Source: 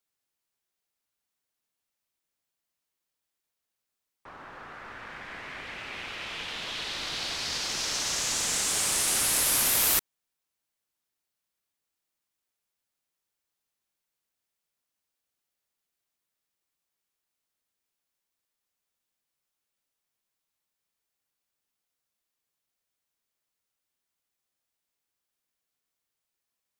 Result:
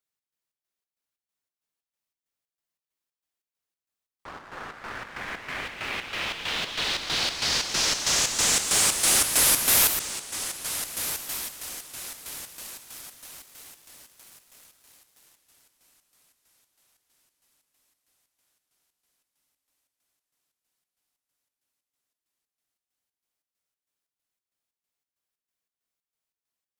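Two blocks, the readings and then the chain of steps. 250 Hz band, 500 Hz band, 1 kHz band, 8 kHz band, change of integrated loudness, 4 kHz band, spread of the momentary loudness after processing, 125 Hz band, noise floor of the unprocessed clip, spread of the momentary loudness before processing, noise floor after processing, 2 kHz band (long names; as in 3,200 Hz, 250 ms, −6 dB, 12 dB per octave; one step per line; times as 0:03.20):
+5.0 dB, +5.0 dB, +5.0 dB, +4.5 dB, +2.5 dB, +5.0 dB, 21 LU, +5.0 dB, −85 dBFS, 20 LU, below −85 dBFS, +5.0 dB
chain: feedback delay with all-pass diffusion 1,380 ms, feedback 49%, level −13 dB
leveller curve on the samples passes 2
square-wave tremolo 3.1 Hz, depth 60%, duty 60%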